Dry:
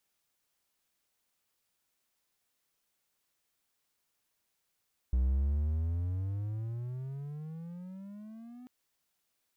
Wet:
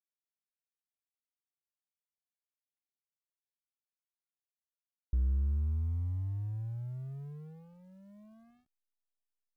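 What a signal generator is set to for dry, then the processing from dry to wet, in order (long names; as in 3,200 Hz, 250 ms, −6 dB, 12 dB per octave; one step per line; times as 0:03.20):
pitch glide with a swell triangle, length 3.54 s, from 61.4 Hz, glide +24.5 semitones, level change −22 dB, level −22.5 dB
dynamic equaliser 170 Hz, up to −5 dB, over −55 dBFS, Q 5.6
slack as between gear wheels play −38.5 dBFS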